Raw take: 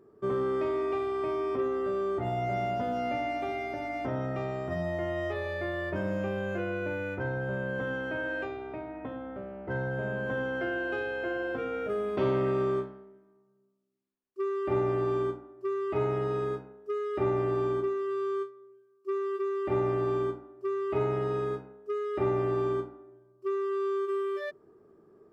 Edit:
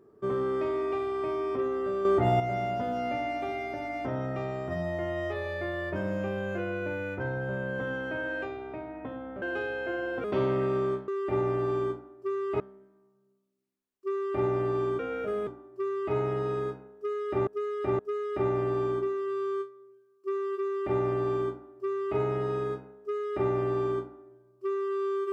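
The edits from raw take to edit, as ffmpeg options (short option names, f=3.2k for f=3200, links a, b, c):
-filter_complex "[0:a]asplit=11[a][b][c][d][e][f][g][h][i][j][k];[a]atrim=end=2.052[l];[b]atrim=start=2.048:end=2.402,asetpts=PTS-STARTPTS,volume=7.5dB[m];[c]atrim=start=2.398:end=9.422[n];[d]atrim=start=10.788:end=11.612[o];[e]atrim=start=12.088:end=12.932[p];[f]atrim=start=19.468:end=20.992[q];[g]atrim=start=12.928:end=15.322[r];[h]atrim=start=11.608:end=12.092[s];[i]atrim=start=15.318:end=17.322[t];[j]atrim=start=16.798:end=17.322[u];[k]atrim=start=16.798[v];[l][m]acrossfade=d=0.004:c1=hsin:c2=hsin[w];[w][n]acrossfade=d=0.004:c1=hsin:c2=hsin[x];[x][o]acrossfade=d=0.004:c1=hsin:c2=hsin[y];[y][p]acrossfade=d=0.004:c1=hsin:c2=hsin[z];[z][q]acrossfade=d=0.004:c1=hsin:c2=hsin[aa];[aa][r]acrossfade=d=0.004:c1=hsin:c2=hsin[ab];[ab][s]acrossfade=d=0.004:c1=hsin:c2=hsin[ac];[ac][t]acrossfade=d=0.004:c1=hsin:c2=hsin[ad];[ad][u]acrossfade=d=0.004:c1=hsin:c2=hsin[ae];[ae][v]acrossfade=d=0.004:c1=hsin:c2=hsin"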